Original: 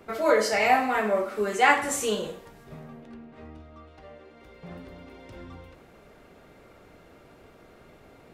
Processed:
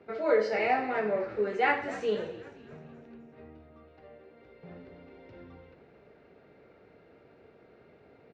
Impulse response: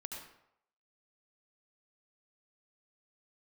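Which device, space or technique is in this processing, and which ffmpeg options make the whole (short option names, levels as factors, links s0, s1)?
frequency-shifting delay pedal into a guitar cabinet: -filter_complex "[0:a]asplit=6[s0][s1][s2][s3][s4][s5];[s1]adelay=258,afreqshift=-98,volume=0.158[s6];[s2]adelay=516,afreqshift=-196,volume=0.0822[s7];[s3]adelay=774,afreqshift=-294,volume=0.0427[s8];[s4]adelay=1032,afreqshift=-392,volume=0.0224[s9];[s5]adelay=1290,afreqshift=-490,volume=0.0116[s10];[s0][s6][s7][s8][s9][s10]amix=inputs=6:normalize=0,highpass=82,equalizer=f=440:t=q:w=4:g=6,equalizer=f=1100:t=q:w=4:g=-6,equalizer=f=3300:t=q:w=4:g=-7,lowpass=f=4100:w=0.5412,lowpass=f=4100:w=1.3066,volume=0.501"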